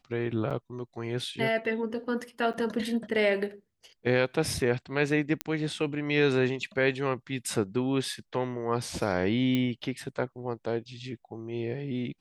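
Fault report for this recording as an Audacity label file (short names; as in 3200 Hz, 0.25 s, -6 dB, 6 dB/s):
0.500000	0.510000	gap 6.6 ms
2.530000	2.540000	gap 8.3 ms
5.410000	5.410000	pop -12 dBFS
9.550000	9.550000	pop -16 dBFS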